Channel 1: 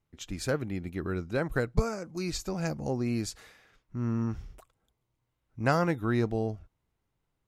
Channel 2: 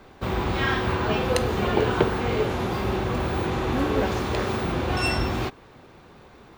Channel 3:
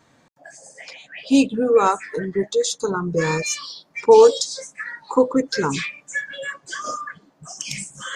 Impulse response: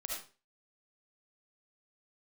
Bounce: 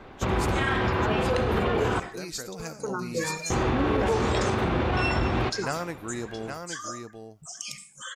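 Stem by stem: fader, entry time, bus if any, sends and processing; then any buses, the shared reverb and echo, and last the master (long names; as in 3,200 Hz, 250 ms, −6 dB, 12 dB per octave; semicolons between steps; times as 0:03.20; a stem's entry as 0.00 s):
−5.5 dB, 0.00 s, send −16 dB, echo send −6 dB, low-shelf EQ 130 Hz −11.5 dB
+1.5 dB, 0.00 s, muted 0:02.00–0:03.50, send −11.5 dB, no echo send, low-pass filter 2,600 Hz 12 dB per octave
−9.5 dB, 0.00 s, send −10 dB, echo send −18.5 dB, reverb reduction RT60 1.4 s; every ending faded ahead of time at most 120 dB per second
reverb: on, RT60 0.35 s, pre-delay 30 ms
echo: single-tap delay 818 ms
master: high-shelf EQ 5,100 Hz +11.5 dB; brickwall limiter −16 dBFS, peak gain reduction 10.5 dB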